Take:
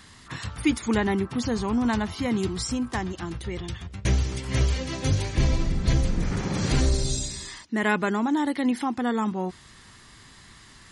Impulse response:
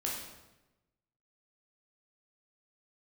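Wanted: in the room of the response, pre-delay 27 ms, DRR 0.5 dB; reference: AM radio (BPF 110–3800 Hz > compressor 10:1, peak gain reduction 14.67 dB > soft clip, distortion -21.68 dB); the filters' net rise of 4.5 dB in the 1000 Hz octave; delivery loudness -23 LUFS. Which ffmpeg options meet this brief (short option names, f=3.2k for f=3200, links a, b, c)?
-filter_complex "[0:a]equalizer=f=1k:t=o:g=5.5,asplit=2[a][b];[1:a]atrim=start_sample=2205,adelay=27[c];[b][c]afir=irnorm=-1:irlink=0,volume=-4dB[d];[a][d]amix=inputs=2:normalize=0,highpass=110,lowpass=3.8k,acompressor=threshold=-28dB:ratio=10,asoftclip=threshold=-23dB,volume=10.5dB"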